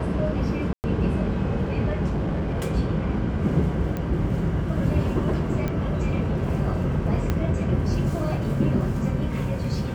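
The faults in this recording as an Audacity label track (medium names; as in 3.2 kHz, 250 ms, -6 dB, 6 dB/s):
0.730000	0.840000	dropout 109 ms
2.060000	2.630000	clipped -22 dBFS
3.970000	3.970000	pop -17 dBFS
5.680000	5.680000	pop -15 dBFS
7.300000	7.300000	pop -11 dBFS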